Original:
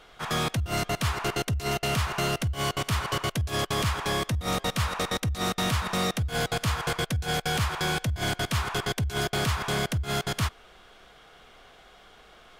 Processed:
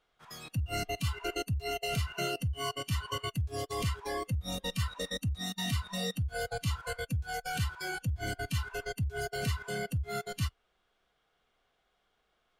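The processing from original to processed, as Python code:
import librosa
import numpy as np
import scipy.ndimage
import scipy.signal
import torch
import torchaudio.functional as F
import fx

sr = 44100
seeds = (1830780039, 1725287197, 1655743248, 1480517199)

y = fx.noise_reduce_blind(x, sr, reduce_db=19)
y = y * librosa.db_to_amplitude(-4.0)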